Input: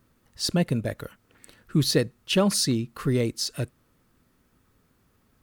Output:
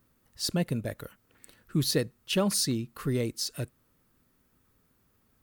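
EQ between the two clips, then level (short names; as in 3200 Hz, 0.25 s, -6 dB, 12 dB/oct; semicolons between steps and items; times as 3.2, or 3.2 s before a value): high shelf 12000 Hz +10.5 dB; -5.0 dB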